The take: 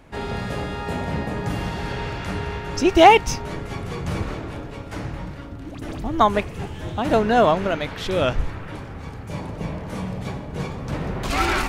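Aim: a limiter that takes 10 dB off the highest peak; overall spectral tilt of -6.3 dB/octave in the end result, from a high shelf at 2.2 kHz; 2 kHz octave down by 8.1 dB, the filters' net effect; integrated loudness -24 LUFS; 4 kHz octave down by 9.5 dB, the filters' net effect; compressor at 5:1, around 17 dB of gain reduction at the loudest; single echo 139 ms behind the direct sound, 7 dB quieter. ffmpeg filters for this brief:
-af "equalizer=f=2000:t=o:g=-5.5,highshelf=f=2200:g=-7,equalizer=f=4000:t=o:g=-4,acompressor=threshold=0.0398:ratio=5,alimiter=level_in=1.33:limit=0.0631:level=0:latency=1,volume=0.75,aecho=1:1:139:0.447,volume=3.55"

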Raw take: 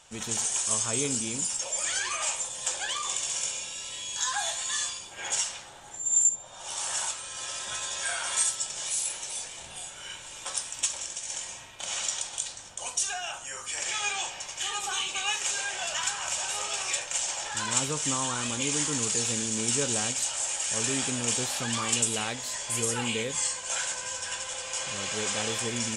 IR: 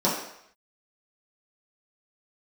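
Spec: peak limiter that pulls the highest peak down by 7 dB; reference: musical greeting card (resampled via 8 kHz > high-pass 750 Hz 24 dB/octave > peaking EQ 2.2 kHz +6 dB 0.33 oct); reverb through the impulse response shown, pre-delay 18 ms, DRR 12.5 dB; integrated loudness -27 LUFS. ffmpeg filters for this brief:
-filter_complex "[0:a]alimiter=limit=0.119:level=0:latency=1,asplit=2[s0][s1];[1:a]atrim=start_sample=2205,adelay=18[s2];[s1][s2]afir=irnorm=-1:irlink=0,volume=0.0447[s3];[s0][s3]amix=inputs=2:normalize=0,aresample=8000,aresample=44100,highpass=f=750:w=0.5412,highpass=f=750:w=1.3066,equalizer=f=2200:t=o:w=0.33:g=6,volume=2.37"

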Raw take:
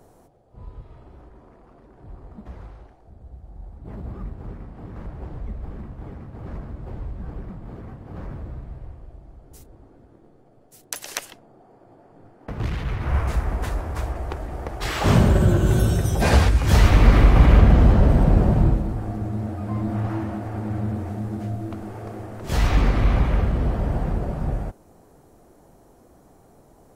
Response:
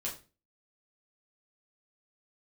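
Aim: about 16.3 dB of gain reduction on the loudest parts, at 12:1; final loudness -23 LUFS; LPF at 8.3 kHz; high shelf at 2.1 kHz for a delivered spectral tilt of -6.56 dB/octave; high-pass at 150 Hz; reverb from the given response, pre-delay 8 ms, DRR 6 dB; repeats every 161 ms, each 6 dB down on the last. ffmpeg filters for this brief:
-filter_complex "[0:a]highpass=150,lowpass=8300,highshelf=f=2100:g=-5.5,acompressor=threshold=0.0251:ratio=12,aecho=1:1:161|322|483|644|805|966:0.501|0.251|0.125|0.0626|0.0313|0.0157,asplit=2[s0][s1];[1:a]atrim=start_sample=2205,adelay=8[s2];[s1][s2]afir=irnorm=-1:irlink=0,volume=0.422[s3];[s0][s3]amix=inputs=2:normalize=0,volume=4.22"

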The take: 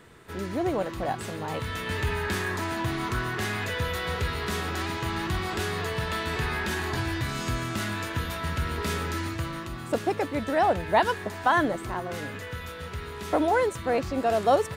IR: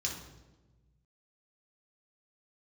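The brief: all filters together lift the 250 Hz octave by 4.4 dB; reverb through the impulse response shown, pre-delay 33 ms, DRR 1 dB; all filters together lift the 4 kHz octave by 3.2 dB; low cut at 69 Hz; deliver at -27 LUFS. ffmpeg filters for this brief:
-filter_complex "[0:a]highpass=69,equalizer=f=250:t=o:g=6,equalizer=f=4000:t=o:g=4,asplit=2[s0][s1];[1:a]atrim=start_sample=2205,adelay=33[s2];[s1][s2]afir=irnorm=-1:irlink=0,volume=0.668[s3];[s0][s3]amix=inputs=2:normalize=0,volume=0.668"

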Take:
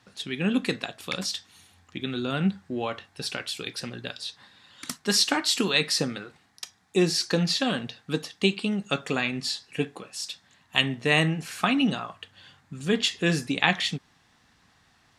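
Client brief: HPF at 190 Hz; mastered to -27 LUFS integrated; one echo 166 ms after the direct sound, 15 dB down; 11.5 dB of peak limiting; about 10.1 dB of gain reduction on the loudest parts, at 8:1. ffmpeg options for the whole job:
-af "highpass=190,acompressor=threshold=0.0398:ratio=8,alimiter=limit=0.075:level=0:latency=1,aecho=1:1:166:0.178,volume=2.66"

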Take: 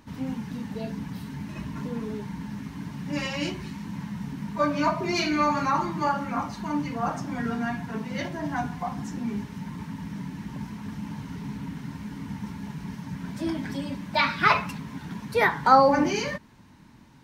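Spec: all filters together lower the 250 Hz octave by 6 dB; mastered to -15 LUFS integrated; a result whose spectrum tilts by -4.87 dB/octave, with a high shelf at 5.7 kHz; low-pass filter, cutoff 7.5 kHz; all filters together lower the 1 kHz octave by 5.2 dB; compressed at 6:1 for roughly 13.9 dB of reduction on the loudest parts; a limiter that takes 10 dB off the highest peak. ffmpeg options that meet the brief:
-af "lowpass=7500,equalizer=f=250:t=o:g=-7.5,equalizer=f=1000:t=o:g=-6.5,highshelf=f=5700:g=4.5,acompressor=threshold=0.0282:ratio=6,volume=16.8,alimiter=limit=0.531:level=0:latency=1"

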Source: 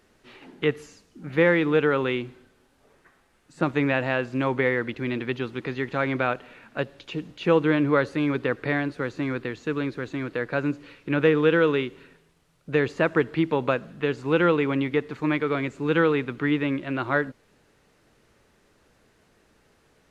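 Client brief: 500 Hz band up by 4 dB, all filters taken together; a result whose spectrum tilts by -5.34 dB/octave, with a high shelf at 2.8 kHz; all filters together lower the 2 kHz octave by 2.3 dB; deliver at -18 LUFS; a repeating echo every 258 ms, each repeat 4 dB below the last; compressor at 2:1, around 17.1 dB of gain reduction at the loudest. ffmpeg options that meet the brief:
-af "equalizer=f=500:t=o:g=4.5,equalizer=f=2000:t=o:g=-5,highshelf=f=2800:g=4.5,acompressor=threshold=0.00562:ratio=2,aecho=1:1:258|516|774|1032|1290|1548|1806|2064|2322:0.631|0.398|0.25|0.158|0.0994|0.0626|0.0394|0.0249|0.0157,volume=7.94"

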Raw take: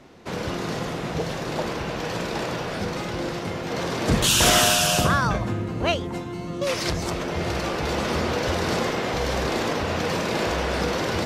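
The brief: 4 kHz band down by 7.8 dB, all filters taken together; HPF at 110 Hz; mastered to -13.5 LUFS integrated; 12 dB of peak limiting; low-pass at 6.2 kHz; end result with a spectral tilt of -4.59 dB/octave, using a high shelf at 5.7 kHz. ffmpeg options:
-af "highpass=110,lowpass=6200,equalizer=f=4000:t=o:g=-7,highshelf=f=5700:g=-8.5,volume=6.68,alimiter=limit=0.596:level=0:latency=1"

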